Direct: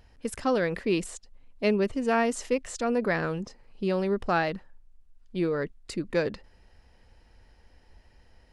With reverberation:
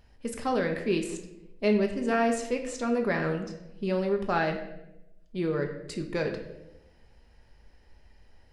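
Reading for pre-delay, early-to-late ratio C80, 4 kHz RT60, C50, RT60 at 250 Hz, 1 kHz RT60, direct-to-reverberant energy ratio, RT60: 5 ms, 10.5 dB, 0.65 s, 8.5 dB, 1.1 s, 0.75 s, 3.0 dB, 0.90 s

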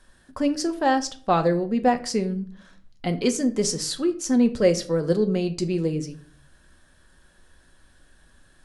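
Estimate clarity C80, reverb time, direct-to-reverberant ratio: 19.5 dB, 0.45 s, 7.0 dB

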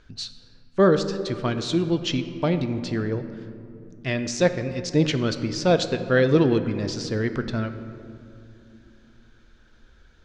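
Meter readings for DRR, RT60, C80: 8.5 dB, 2.6 s, 11.0 dB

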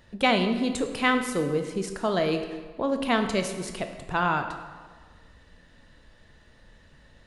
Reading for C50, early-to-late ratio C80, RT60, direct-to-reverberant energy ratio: 7.5 dB, 9.0 dB, 1.5 s, 6.0 dB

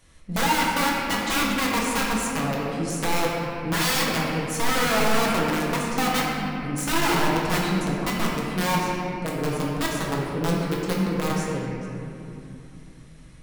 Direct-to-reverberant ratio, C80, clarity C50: -5.0 dB, 0.5 dB, -1.0 dB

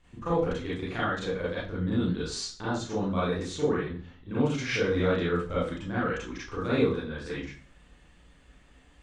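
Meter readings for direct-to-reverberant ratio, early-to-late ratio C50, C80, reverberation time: -9.5 dB, 0.5 dB, 8.0 dB, 0.40 s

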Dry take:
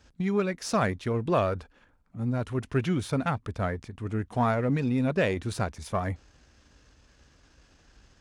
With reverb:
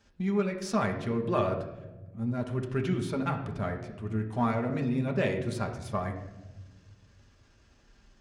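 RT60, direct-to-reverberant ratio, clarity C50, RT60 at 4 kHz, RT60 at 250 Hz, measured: 1.1 s, 1.5 dB, 8.5 dB, 0.65 s, 1.8 s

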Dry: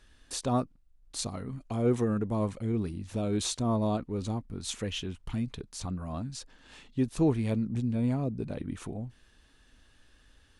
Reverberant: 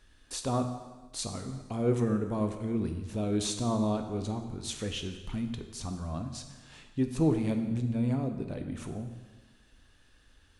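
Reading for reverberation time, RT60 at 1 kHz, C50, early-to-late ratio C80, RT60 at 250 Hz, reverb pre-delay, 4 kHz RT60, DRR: 1.3 s, 1.3 s, 8.0 dB, 9.5 dB, 1.3 s, 6 ms, 1.2 s, 6.0 dB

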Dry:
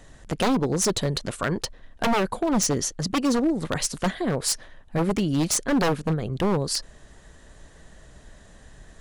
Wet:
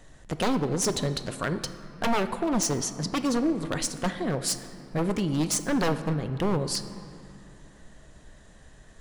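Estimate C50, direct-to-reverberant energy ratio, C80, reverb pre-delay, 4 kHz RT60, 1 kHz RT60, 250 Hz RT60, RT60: 11.0 dB, 9.5 dB, 12.0 dB, 5 ms, 1.5 s, 2.8 s, 3.5 s, 2.6 s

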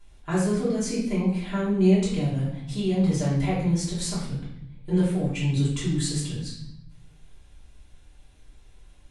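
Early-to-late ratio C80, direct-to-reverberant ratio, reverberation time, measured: 6.0 dB, -8.5 dB, 0.70 s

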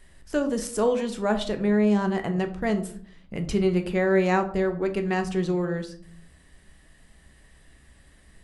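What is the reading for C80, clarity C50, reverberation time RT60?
16.0 dB, 12.5 dB, 0.55 s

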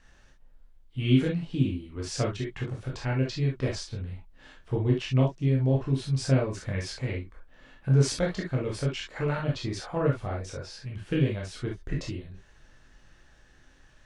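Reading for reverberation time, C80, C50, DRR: not exponential, 60.0 dB, 6.0 dB, -2.5 dB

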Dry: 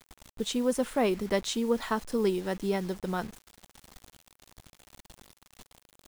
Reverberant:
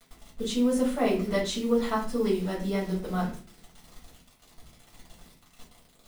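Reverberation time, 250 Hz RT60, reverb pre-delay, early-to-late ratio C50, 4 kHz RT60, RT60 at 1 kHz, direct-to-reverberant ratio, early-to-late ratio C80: 0.40 s, 0.60 s, 4 ms, 7.5 dB, 0.30 s, 0.35 s, -5.5 dB, 12.5 dB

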